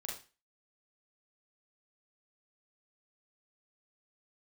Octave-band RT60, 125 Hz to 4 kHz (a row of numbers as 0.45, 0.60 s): 0.35, 0.30, 0.30, 0.35, 0.35, 0.35 s